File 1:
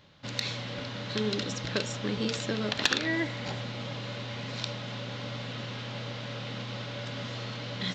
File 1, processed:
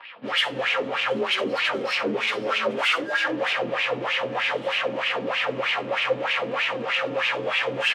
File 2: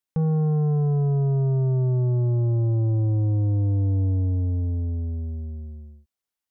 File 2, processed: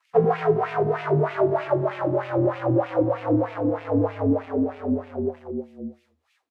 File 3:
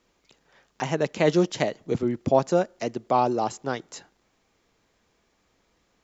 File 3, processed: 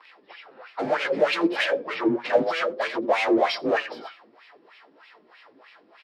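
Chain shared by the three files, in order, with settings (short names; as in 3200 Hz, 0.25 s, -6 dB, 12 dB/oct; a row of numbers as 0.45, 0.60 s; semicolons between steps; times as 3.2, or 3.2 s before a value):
inharmonic rescaling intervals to 91%; notch 1500 Hz, Q 20; in parallel at +1.5 dB: compressor, threshold -31 dBFS; on the sum: overdrive pedal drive 25 dB, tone 4300 Hz, clips at -6.5 dBFS; overloaded stage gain 18.5 dB; high shelf 4900 Hz +7 dB; doubler 18 ms -13 dB; de-hum 79.69 Hz, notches 9; on a send: echo 87 ms -10.5 dB; on the sum: dynamic EQ 550 Hz, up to +5 dB, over -33 dBFS, Q 1.9; flange 0.6 Hz, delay 2.9 ms, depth 7 ms, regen +65%; wah 3.2 Hz 260–2600 Hz, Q 2.9; match loudness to -24 LUFS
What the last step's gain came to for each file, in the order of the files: +6.5, +12.0, +7.5 dB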